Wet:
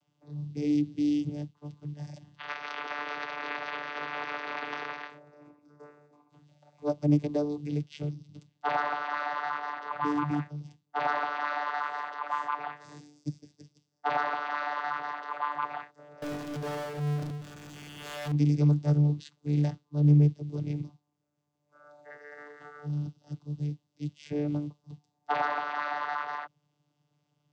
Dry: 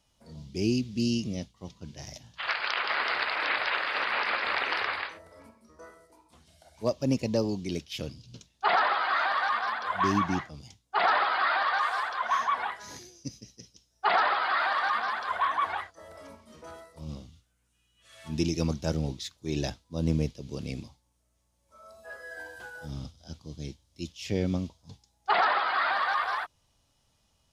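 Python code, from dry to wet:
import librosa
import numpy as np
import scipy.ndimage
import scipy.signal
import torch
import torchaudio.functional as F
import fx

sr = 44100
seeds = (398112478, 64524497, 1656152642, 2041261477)

y = fx.vocoder(x, sr, bands=16, carrier='saw', carrier_hz=147.0)
y = fx.power_curve(y, sr, exponent=0.35, at=(16.22, 18.32))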